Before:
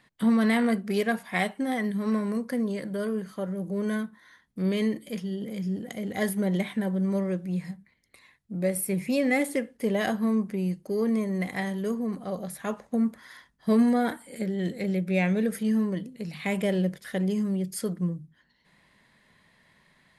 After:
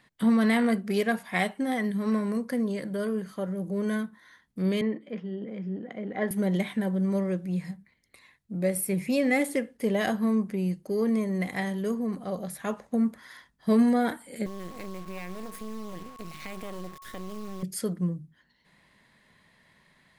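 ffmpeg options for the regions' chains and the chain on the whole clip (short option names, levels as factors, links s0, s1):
-filter_complex "[0:a]asettb=1/sr,asplit=3[s0][s1][s2];[s0]atrim=end=4.814[s3];[s1]atrim=start=4.81:end=6.31,asetpts=PTS-STARTPTS,afade=t=in:d=0.004:c=qsin,afade=t=out:st=1.496:d=0.004:c=qsin,lowpass=4200,acrossover=split=180 2400:gain=0.2 1 0.158[s4][s5][s6];[s4][s5][s6]amix=inputs=3:normalize=0[s7];[s2]atrim=start=6.306[s8];[s3][s7]acrossfade=d=0.004:c1=hsin:c2=qsin[s9];[s9][s8]acrossfade=d=0.004:c1=qsin:c2=hsin,asettb=1/sr,asplit=3[s10][s11][s12];[s10]atrim=end=14.464[s13];[s11]atrim=start=14.46:end=17.63,asetpts=PTS-STARTPTS,afade=t=in:d=0.004:c=qsin,afade=t=out:st=3.166:d=0.004:c=qsin,acompressor=threshold=0.0224:ratio=5:attack=3.2:release=140:knee=1:detection=peak,acrusher=bits=5:dc=4:mix=0:aa=0.000001,aeval=exprs='val(0)+0.00447*sin(2*PI*1100*n/s)':c=same[s14];[s12]atrim=start=17.626[s15];[s13][s14]acrossfade=d=0.004:c1=hsin:c2=qsin[s16];[s16][s15]acrossfade=d=0.004:c1=qsin:c2=hsin"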